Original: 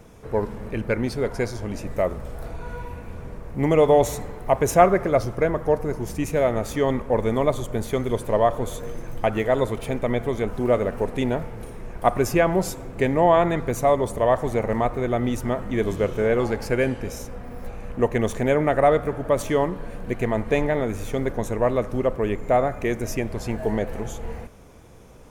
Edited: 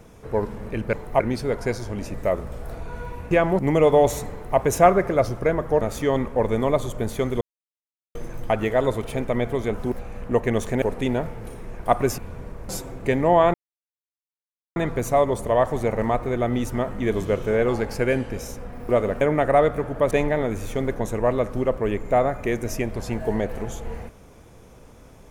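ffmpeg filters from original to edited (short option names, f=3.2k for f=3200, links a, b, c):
-filter_complex "[0:a]asplit=16[a][b][c][d][e][f][g][h][i][j][k][l][m][n][o][p];[a]atrim=end=0.932[q];[b]atrim=start=4.268:end=4.542[r];[c]atrim=start=0.928:end=3.042[s];[d]atrim=start=12.338:end=12.622[t];[e]atrim=start=3.548:end=5.772[u];[f]atrim=start=6.548:end=8.15,asetpts=PTS-STARTPTS,afade=t=out:st=1.598:d=0.004:c=hsin[v];[g]atrim=start=8.15:end=8.89,asetpts=PTS-STARTPTS,volume=0[w];[h]atrim=start=8.89:end=10.662,asetpts=PTS-STARTPTS,afade=t=in:d=0.004:c=hsin[x];[i]atrim=start=17.598:end=18.502[y];[j]atrim=start=10.978:end=12.342[z];[k]atrim=start=3.038:end=3.552[aa];[l]atrim=start=12.618:end=13.47,asetpts=PTS-STARTPTS,afade=t=out:st=0.848:d=0.004:c=hsin,apad=pad_dur=1.22[ab];[m]atrim=start=13.47:end=17.602,asetpts=PTS-STARTPTS,afade=t=in:d=0.004:c=hsin[ac];[n]atrim=start=10.658:end=10.982[ad];[o]atrim=start=18.498:end=19.402[ae];[p]atrim=start=20.488[af];[q][r]acrossfade=d=0.004:c1=hsin:c2=hsin[ag];[ag][s]acrossfade=d=0.004:c1=hsin:c2=hsin[ah];[ah][t]acrossfade=d=0.004:c1=hsin:c2=hsin[ai];[ai][u]acrossfade=d=0.004:c1=hsin:c2=hsin[aj];[v][w][x]concat=n=3:v=0:a=1[ak];[aj][ak]acrossfade=d=0.004:c1=hsin:c2=hsin[al];[al][y]acrossfade=d=0.004:c1=hsin:c2=hsin[am];[am][z]acrossfade=d=0.004:c1=hsin:c2=hsin[an];[an][aa]acrossfade=d=0.004:c1=hsin:c2=hsin[ao];[ab][ac]concat=n=2:v=0:a=1[ap];[ao][ap]acrossfade=d=0.004:c1=hsin:c2=hsin[aq];[aq][ad]acrossfade=d=0.004:c1=hsin:c2=hsin[ar];[ar][ae]acrossfade=d=0.004:c1=hsin:c2=hsin[as];[as][af]acrossfade=d=0.004:c1=hsin:c2=hsin"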